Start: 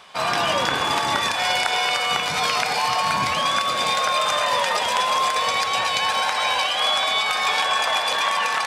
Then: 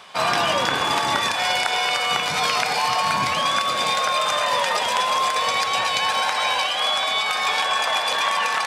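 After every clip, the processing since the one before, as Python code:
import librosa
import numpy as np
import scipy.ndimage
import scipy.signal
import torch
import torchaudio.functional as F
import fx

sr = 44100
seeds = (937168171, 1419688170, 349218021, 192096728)

y = scipy.signal.sosfilt(scipy.signal.butter(2, 76.0, 'highpass', fs=sr, output='sos'), x)
y = fx.rider(y, sr, range_db=10, speed_s=0.5)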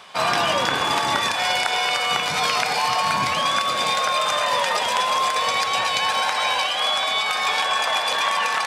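y = x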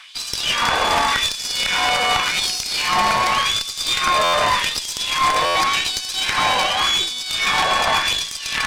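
y = fx.filter_lfo_highpass(x, sr, shape='sine', hz=0.87, low_hz=490.0, high_hz=5600.0, q=1.6)
y = fx.tube_stage(y, sr, drive_db=17.0, bias=0.75)
y = fx.buffer_glitch(y, sr, at_s=(4.23, 5.45), block=512, repeats=8)
y = y * 10.0 ** (6.5 / 20.0)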